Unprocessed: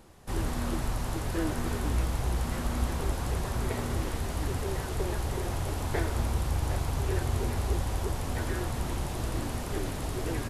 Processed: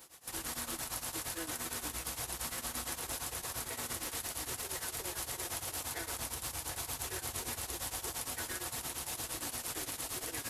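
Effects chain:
shaped tremolo triangle 8.7 Hz, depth 95%
brickwall limiter −25.5 dBFS, peak gain reduction 8 dB
in parallel at −12 dB: soft clipping −40 dBFS, distortion −7 dB
on the sum: spectral tilt +4 dB per octave
compressor whose output falls as the input rises −37 dBFS, ratio −1
notch comb filter 200 Hz

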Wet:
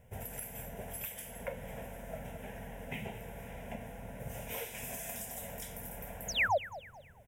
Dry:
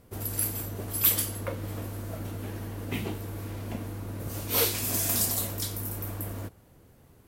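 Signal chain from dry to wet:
mains-hum notches 50/100 Hz
downward compressor 6 to 1, threshold −31 dBFS, peak gain reduction 13 dB
sound drawn into the spectrogram fall, 0:06.28–0:06.58, 500–7,200 Hz −26 dBFS
bit reduction 11 bits
high-shelf EQ 8,600 Hz −11.5 dB
phaser with its sweep stopped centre 1,200 Hz, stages 6
on a send: repeating echo 218 ms, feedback 37%, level −16 dB

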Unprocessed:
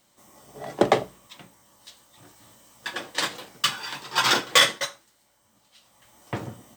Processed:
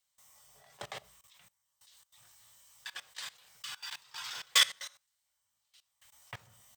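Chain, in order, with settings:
guitar amp tone stack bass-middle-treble 10-0-10
output level in coarse steps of 20 dB
level −1.5 dB

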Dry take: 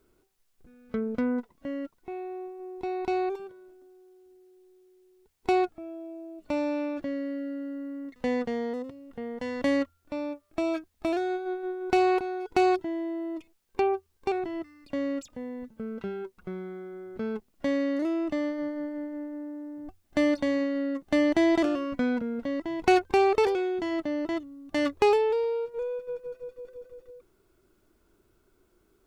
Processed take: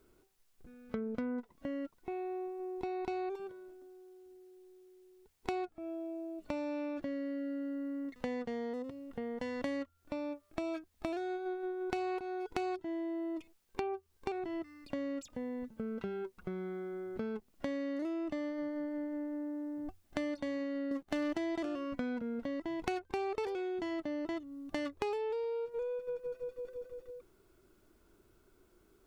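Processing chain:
0:20.91–0:21.38: leveller curve on the samples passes 2
downward compressor 4 to 1, threshold −36 dBFS, peak gain reduction 17 dB

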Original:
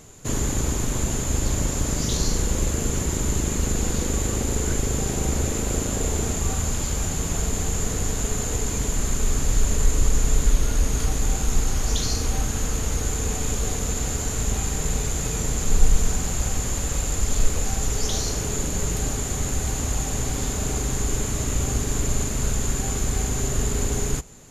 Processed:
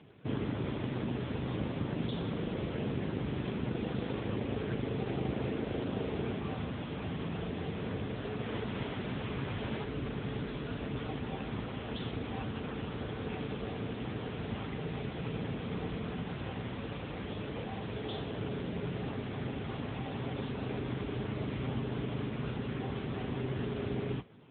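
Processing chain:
parametric band 73 Hz −10 dB 0.3 octaves
0:08.42–0:09.83: background noise pink −33 dBFS
level −4 dB
AMR narrowband 6.7 kbit/s 8,000 Hz

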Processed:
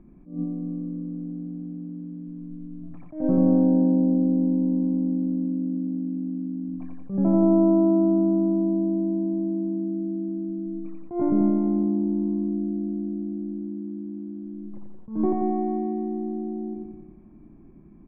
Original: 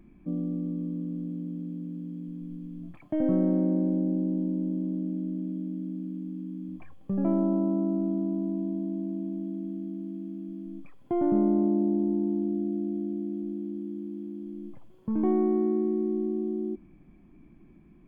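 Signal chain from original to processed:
low-pass filter 1,200 Hz 12 dB per octave
repeating echo 88 ms, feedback 57%, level −3 dB
level that may rise only so fast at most 150 dB per second
level +3 dB

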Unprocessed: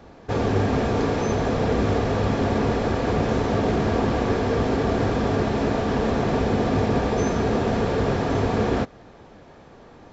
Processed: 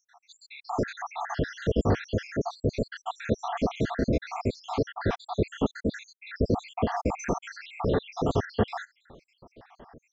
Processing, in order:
time-frequency cells dropped at random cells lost 80%

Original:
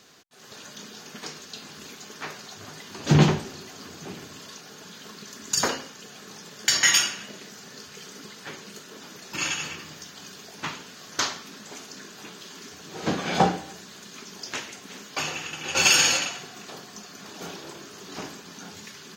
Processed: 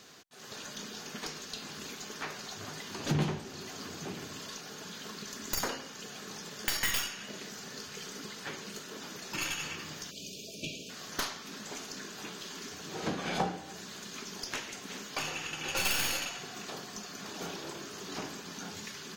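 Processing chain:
stylus tracing distortion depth 0.12 ms
time-frequency box erased 0:10.11–0:10.90, 670–2,300 Hz
downward compressor 2 to 1, threshold −37 dBFS, peak gain reduction 13.5 dB

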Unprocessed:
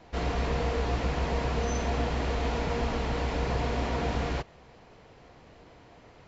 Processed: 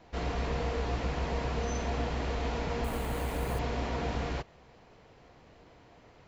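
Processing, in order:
0:02.84–0:03.59: bad sample-rate conversion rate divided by 4×, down filtered, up hold
level −3.5 dB

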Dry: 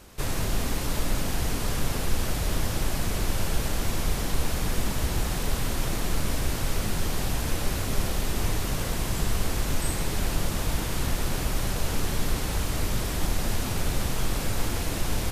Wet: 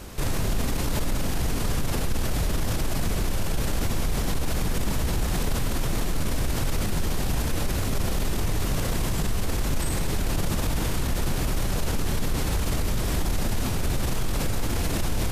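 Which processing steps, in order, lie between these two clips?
low-shelf EQ 460 Hz +4 dB
brickwall limiter −24.5 dBFS, peak gain reduction 16 dB
level +7.5 dB

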